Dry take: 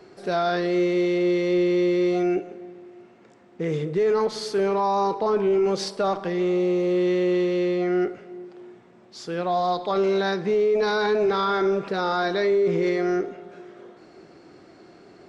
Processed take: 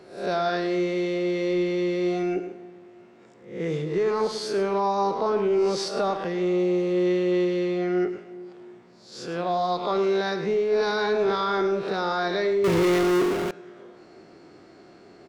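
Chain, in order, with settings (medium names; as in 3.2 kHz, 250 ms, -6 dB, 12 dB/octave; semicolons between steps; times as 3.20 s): reverse spectral sustain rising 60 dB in 0.50 s; delay 106 ms -11.5 dB; 12.64–13.51 s: power-law waveshaper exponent 0.35; trim -2.5 dB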